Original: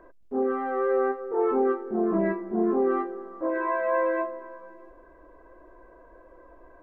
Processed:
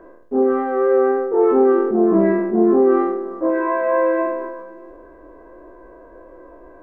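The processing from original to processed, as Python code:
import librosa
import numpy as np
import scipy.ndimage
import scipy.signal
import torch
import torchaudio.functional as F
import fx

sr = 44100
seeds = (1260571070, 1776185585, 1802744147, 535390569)

y = fx.spec_trails(x, sr, decay_s=0.65)
y = fx.peak_eq(y, sr, hz=330.0, db=7.0, octaves=2.3)
y = fx.sustainer(y, sr, db_per_s=40.0)
y = y * librosa.db_to_amplitude(2.5)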